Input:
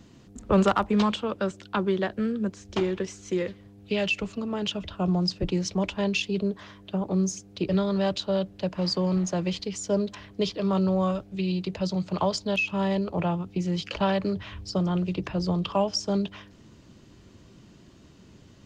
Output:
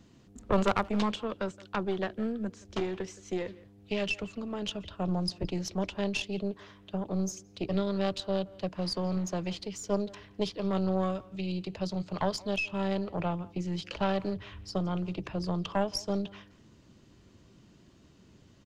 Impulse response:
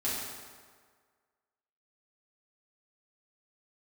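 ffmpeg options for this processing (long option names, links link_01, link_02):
-filter_complex "[0:a]asplit=2[link_01][link_02];[link_02]adelay=170,highpass=300,lowpass=3400,asoftclip=type=hard:threshold=-21dB,volume=-19dB[link_03];[link_01][link_03]amix=inputs=2:normalize=0,aeval=exprs='0.266*(cos(1*acos(clip(val(0)/0.266,-1,1)))-cos(1*PI/2))+0.119*(cos(2*acos(clip(val(0)/0.266,-1,1)))-cos(2*PI/2))':channel_layout=same,volume=-6dB"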